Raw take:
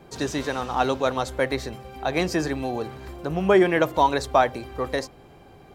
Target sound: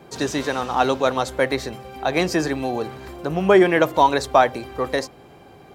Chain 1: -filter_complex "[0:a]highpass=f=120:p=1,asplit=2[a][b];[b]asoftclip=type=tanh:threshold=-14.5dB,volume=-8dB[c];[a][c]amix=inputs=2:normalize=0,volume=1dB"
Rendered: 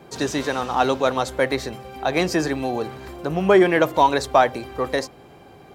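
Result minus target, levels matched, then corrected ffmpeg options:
soft clip: distortion +16 dB
-filter_complex "[0:a]highpass=f=120:p=1,asplit=2[a][b];[b]asoftclip=type=tanh:threshold=-4dB,volume=-8dB[c];[a][c]amix=inputs=2:normalize=0,volume=1dB"

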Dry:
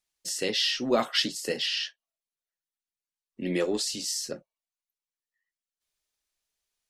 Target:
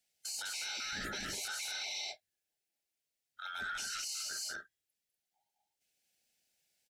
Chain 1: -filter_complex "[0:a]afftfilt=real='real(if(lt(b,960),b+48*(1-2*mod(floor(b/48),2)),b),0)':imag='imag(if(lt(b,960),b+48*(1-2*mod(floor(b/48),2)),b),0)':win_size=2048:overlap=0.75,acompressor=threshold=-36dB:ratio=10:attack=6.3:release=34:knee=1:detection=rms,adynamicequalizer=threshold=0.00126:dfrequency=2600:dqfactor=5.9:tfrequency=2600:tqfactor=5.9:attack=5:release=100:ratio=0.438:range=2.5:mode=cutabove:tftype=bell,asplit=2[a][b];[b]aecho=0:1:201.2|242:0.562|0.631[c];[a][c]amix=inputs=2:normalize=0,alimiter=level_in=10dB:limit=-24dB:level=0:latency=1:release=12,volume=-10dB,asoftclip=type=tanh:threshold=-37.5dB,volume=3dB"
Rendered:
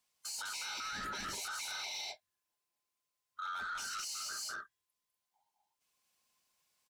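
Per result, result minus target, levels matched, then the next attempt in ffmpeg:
soft clip: distortion +13 dB; 1000 Hz band +5.5 dB
-filter_complex "[0:a]afftfilt=real='real(if(lt(b,960),b+48*(1-2*mod(floor(b/48),2)),b),0)':imag='imag(if(lt(b,960),b+48*(1-2*mod(floor(b/48),2)),b),0)':win_size=2048:overlap=0.75,acompressor=threshold=-36dB:ratio=10:attack=6.3:release=34:knee=1:detection=rms,adynamicequalizer=threshold=0.00126:dfrequency=2600:dqfactor=5.9:tfrequency=2600:tqfactor=5.9:attack=5:release=100:ratio=0.438:range=2.5:mode=cutabove:tftype=bell,asplit=2[a][b];[b]aecho=0:1:201.2|242:0.562|0.631[c];[a][c]amix=inputs=2:normalize=0,alimiter=level_in=10dB:limit=-24dB:level=0:latency=1:release=12,volume=-10dB,asoftclip=type=tanh:threshold=-30dB,volume=3dB"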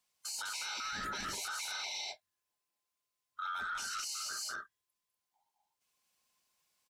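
1000 Hz band +5.5 dB
-filter_complex "[0:a]afftfilt=real='real(if(lt(b,960),b+48*(1-2*mod(floor(b/48),2)),b),0)':imag='imag(if(lt(b,960),b+48*(1-2*mod(floor(b/48),2)),b),0)':win_size=2048:overlap=0.75,acompressor=threshold=-36dB:ratio=10:attack=6.3:release=34:knee=1:detection=rms,asuperstop=centerf=1100:order=4:qfactor=1.6,adynamicequalizer=threshold=0.00126:dfrequency=2600:dqfactor=5.9:tfrequency=2600:tqfactor=5.9:attack=5:release=100:ratio=0.438:range=2.5:mode=cutabove:tftype=bell,asplit=2[a][b];[b]aecho=0:1:201.2|242:0.562|0.631[c];[a][c]amix=inputs=2:normalize=0,alimiter=level_in=10dB:limit=-24dB:level=0:latency=1:release=12,volume=-10dB,asoftclip=type=tanh:threshold=-30dB,volume=3dB"

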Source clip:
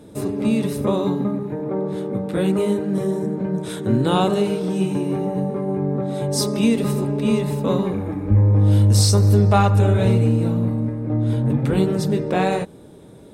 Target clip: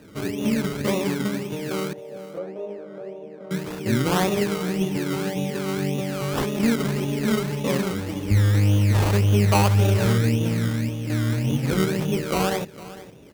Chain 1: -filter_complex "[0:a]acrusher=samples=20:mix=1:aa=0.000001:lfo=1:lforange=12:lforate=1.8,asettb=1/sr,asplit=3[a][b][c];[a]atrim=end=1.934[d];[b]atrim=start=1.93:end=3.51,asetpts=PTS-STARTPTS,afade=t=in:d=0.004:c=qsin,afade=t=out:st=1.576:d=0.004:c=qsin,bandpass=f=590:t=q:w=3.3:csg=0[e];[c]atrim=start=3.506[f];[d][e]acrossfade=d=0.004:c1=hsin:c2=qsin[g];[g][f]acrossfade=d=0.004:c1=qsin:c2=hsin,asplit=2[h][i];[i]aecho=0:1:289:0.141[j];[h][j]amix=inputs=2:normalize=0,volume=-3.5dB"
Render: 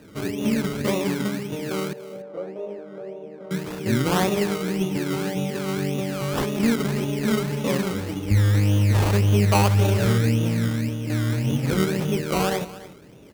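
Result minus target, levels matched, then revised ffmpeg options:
echo 0.167 s early
-filter_complex "[0:a]acrusher=samples=20:mix=1:aa=0.000001:lfo=1:lforange=12:lforate=1.8,asettb=1/sr,asplit=3[a][b][c];[a]atrim=end=1.934[d];[b]atrim=start=1.93:end=3.51,asetpts=PTS-STARTPTS,afade=t=in:d=0.004:c=qsin,afade=t=out:st=1.576:d=0.004:c=qsin,bandpass=f=590:t=q:w=3.3:csg=0[e];[c]atrim=start=3.506[f];[d][e]acrossfade=d=0.004:c1=hsin:c2=qsin[g];[g][f]acrossfade=d=0.004:c1=qsin:c2=hsin,asplit=2[h][i];[i]aecho=0:1:456:0.141[j];[h][j]amix=inputs=2:normalize=0,volume=-3.5dB"

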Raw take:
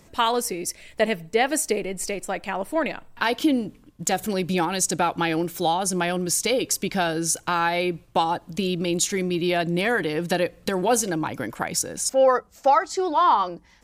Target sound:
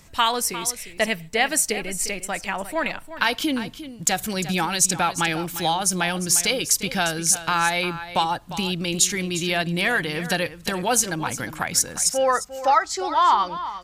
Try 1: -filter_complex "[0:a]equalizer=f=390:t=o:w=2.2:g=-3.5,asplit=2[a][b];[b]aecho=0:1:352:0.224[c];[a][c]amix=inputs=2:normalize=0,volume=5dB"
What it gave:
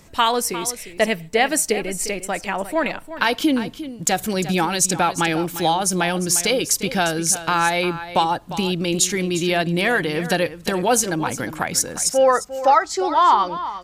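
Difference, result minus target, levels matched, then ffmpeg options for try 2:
500 Hz band +4.0 dB
-filter_complex "[0:a]equalizer=f=390:t=o:w=2.2:g=-10.5,asplit=2[a][b];[b]aecho=0:1:352:0.224[c];[a][c]amix=inputs=2:normalize=0,volume=5dB"

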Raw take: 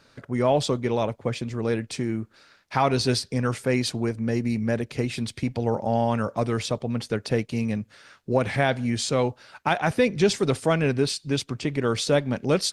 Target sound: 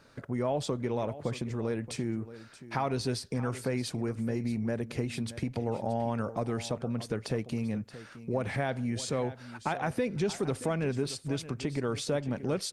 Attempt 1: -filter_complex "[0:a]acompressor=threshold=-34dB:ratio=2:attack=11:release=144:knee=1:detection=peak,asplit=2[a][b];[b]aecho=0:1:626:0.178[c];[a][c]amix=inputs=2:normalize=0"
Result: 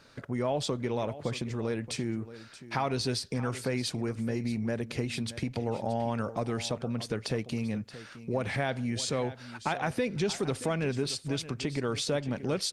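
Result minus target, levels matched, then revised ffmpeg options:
4000 Hz band +4.5 dB
-filter_complex "[0:a]acompressor=threshold=-34dB:ratio=2:attack=11:release=144:knee=1:detection=peak,equalizer=f=3.9k:t=o:w=2:g=-5.5,asplit=2[a][b];[b]aecho=0:1:626:0.178[c];[a][c]amix=inputs=2:normalize=0"

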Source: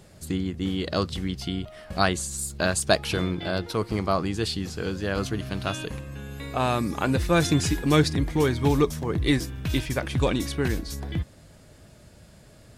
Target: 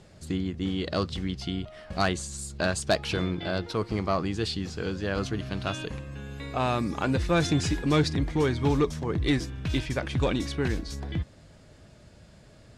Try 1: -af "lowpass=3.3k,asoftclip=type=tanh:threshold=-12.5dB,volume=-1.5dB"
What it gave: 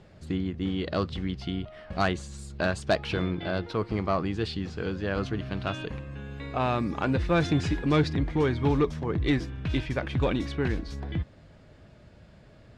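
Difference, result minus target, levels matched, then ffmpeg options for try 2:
8000 Hz band -10.5 dB
-af "lowpass=6.8k,asoftclip=type=tanh:threshold=-12.5dB,volume=-1.5dB"

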